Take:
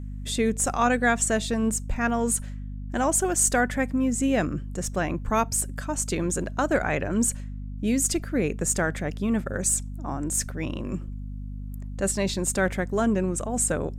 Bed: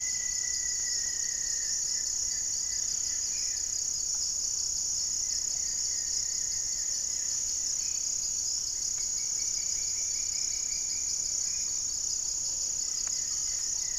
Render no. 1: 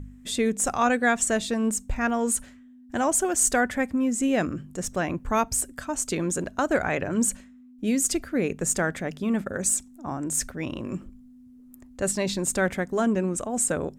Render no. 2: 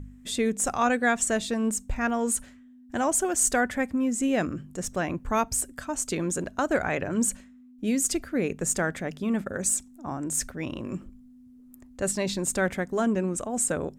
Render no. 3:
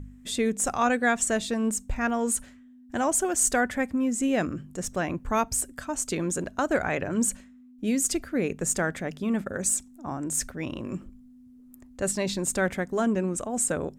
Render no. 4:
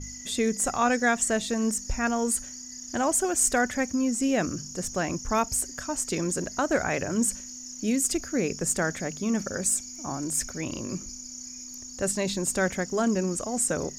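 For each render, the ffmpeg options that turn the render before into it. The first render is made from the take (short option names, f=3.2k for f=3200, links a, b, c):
-af "bandreject=f=50:t=h:w=4,bandreject=f=100:t=h:w=4,bandreject=f=150:t=h:w=4,bandreject=f=200:t=h:w=4"
-af "volume=-1.5dB"
-af anull
-filter_complex "[1:a]volume=-10dB[a];[0:a][a]amix=inputs=2:normalize=0"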